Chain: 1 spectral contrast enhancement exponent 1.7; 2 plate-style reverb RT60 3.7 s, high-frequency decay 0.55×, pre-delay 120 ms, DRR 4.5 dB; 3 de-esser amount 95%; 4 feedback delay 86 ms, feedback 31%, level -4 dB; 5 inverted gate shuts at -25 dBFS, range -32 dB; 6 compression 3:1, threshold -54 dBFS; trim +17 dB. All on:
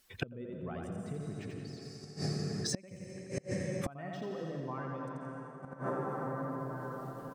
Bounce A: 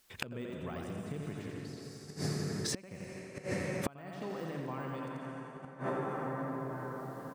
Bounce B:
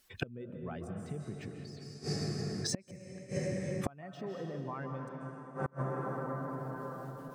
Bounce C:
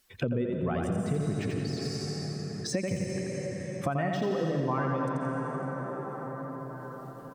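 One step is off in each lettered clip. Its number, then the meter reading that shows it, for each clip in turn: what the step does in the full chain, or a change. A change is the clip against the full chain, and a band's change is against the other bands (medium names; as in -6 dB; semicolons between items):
1, crest factor change +4.0 dB; 4, crest factor change +2.0 dB; 5, crest factor change -4.5 dB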